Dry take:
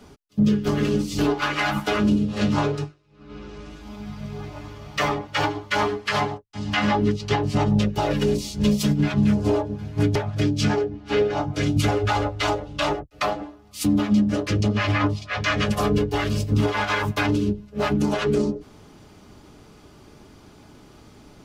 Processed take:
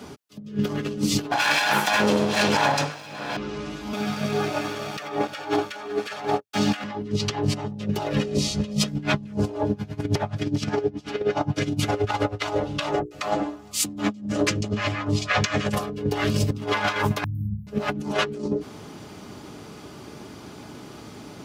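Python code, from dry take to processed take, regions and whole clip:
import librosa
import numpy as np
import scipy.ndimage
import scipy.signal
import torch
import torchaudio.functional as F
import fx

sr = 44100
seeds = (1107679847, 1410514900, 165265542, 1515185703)

y = fx.chain(x, sr, fx.lower_of_two(delay_ms=1.2),
    fx.highpass(hz=750.0, slope=6),
    fx.env_flatten(amount_pct=50), at=(1.31, 3.37))
y = fx.chain(y, sr, fx.highpass(hz=360.0, slope=6),
    fx.leveller(passes=2),
    fx.notch_comb(f0_hz=1000.0), at=(3.93, 6.84))
y = fx.chain(y, sr, fx.air_absorb(metres=51.0),
    fx.hum_notches(base_hz=50, count=7),
    fx.comb(ms=1.6, depth=0.37), at=(8.15, 8.88))
y = fx.chain(y, sr, fx.echo_single(ms=402, db=-23.0),
    fx.tremolo_db(hz=9.5, depth_db=20), at=(9.71, 12.42))
y = fx.chain(y, sr, fx.peak_eq(hz=7300.0, db=6.5, octaves=0.44),
    fx.hum_notches(base_hz=60, count=8), at=(12.92, 15.73))
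y = fx.chain(y, sr, fx.overload_stage(gain_db=15.5),
    fx.over_compress(threshold_db=-24.0, ratio=-0.5),
    fx.cheby2_bandstop(low_hz=460.0, high_hz=6300.0, order=4, stop_db=60), at=(17.24, 17.67))
y = scipy.signal.sosfilt(scipy.signal.butter(2, 110.0, 'highpass', fs=sr, output='sos'), y)
y = fx.over_compress(y, sr, threshold_db=-27.0, ratio=-0.5)
y = F.gain(torch.from_numpy(y), 3.5).numpy()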